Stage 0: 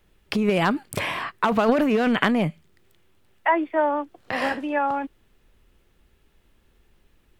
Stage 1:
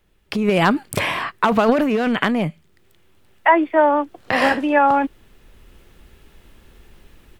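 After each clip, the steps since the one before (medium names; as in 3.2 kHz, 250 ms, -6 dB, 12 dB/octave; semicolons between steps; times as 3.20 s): level rider gain up to 14 dB; trim -1 dB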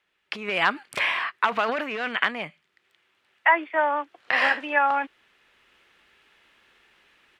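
band-pass filter 2.1 kHz, Q 0.96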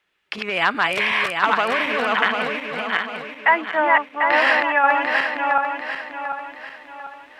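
backward echo that repeats 372 ms, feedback 62%, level -1 dB; trim +2.5 dB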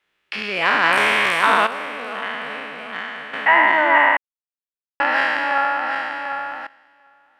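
spectral sustain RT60 2.66 s; random-step tremolo 1.2 Hz, depth 100%; trim -1.5 dB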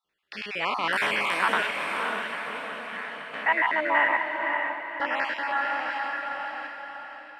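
random holes in the spectrogram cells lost 28%; echo that smears into a reverb 551 ms, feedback 43%, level -4.5 dB; trim -7.5 dB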